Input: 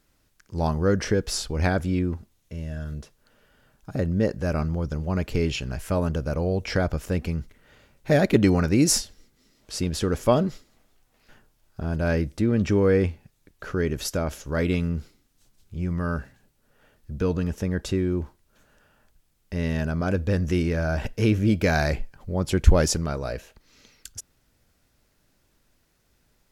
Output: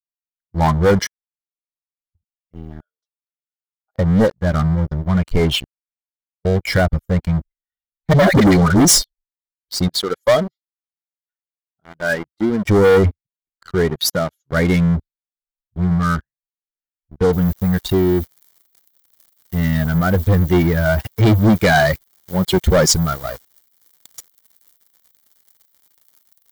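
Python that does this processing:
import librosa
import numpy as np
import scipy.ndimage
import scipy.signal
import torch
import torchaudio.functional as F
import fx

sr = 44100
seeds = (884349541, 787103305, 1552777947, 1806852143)

y = fx.highpass(x, sr, hz=460.0, slope=24, at=(2.81, 3.99))
y = fx.dispersion(y, sr, late='highs', ms=80.0, hz=400.0, at=(8.13, 8.85))
y = fx.highpass(y, sr, hz=370.0, slope=6, at=(9.88, 12.65))
y = fx.highpass(y, sr, hz=94.0, slope=24, at=(13.9, 14.53))
y = fx.noise_floor_step(y, sr, seeds[0], at_s=17.33, before_db=-67, after_db=-45, tilt_db=0.0)
y = fx.highpass(y, sr, hz=fx.line((20.14, 42.0), (22.9, 130.0)), slope=12, at=(20.14, 22.9), fade=0.02)
y = fx.edit(y, sr, fx.room_tone_fill(start_s=1.07, length_s=1.08),
    fx.room_tone_fill(start_s=5.65, length_s=0.8), tone=tone)
y = fx.bin_expand(y, sr, power=2.0)
y = fx.leveller(y, sr, passes=5)
y = fx.notch(y, sr, hz=2600.0, q=5.2)
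y = y * librosa.db_to_amplitude(1.0)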